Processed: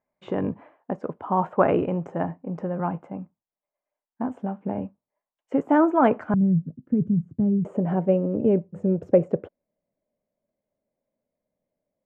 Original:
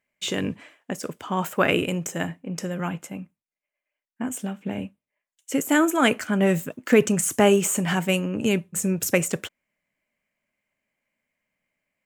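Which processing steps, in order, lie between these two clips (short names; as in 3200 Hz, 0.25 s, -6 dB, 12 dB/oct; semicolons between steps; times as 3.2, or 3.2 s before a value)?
synth low-pass 890 Hz, resonance Q 2, from 6.34 s 160 Hz, from 7.65 s 570 Hz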